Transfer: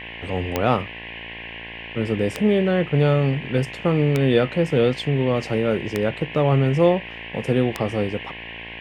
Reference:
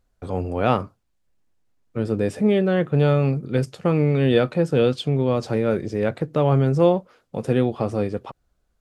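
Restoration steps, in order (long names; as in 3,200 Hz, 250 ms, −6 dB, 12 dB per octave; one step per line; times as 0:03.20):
click removal
hum removal 57 Hz, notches 19
noise reduction from a noise print 30 dB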